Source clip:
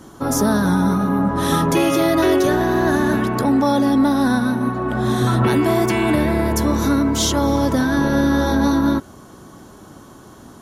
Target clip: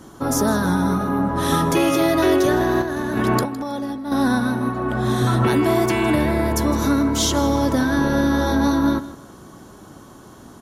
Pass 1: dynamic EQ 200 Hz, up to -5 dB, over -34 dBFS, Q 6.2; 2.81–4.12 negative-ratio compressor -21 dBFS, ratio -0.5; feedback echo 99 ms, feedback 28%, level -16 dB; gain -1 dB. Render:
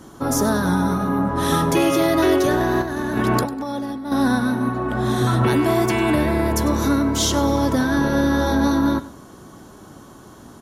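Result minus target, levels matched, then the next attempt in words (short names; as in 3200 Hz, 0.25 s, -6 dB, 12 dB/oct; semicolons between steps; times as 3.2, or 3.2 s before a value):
echo 61 ms early
dynamic EQ 200 Hz, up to -5 dB, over -34 dBFS, Q 6.2; 2.81–4.12 negative-ratio compressor -21 dBFS, ratio -0.5; feedback echo 0.16 s, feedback 28%, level -16 dB; gain -1 dB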